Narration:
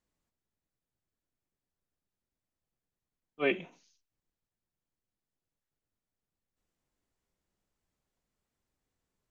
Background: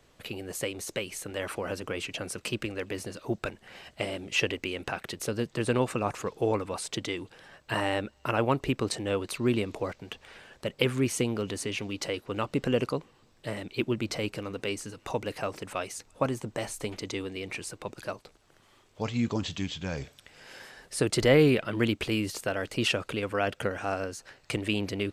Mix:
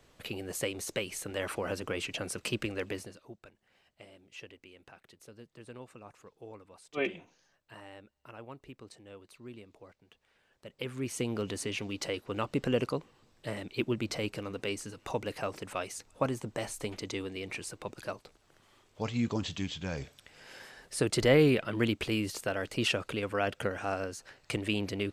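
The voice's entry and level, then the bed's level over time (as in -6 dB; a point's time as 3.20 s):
3.55 s, -3.0 dB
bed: 2.90 s -1 dB
3.38 s -21 dB
10.37 s -21 dB
11.38 s -2.5 dB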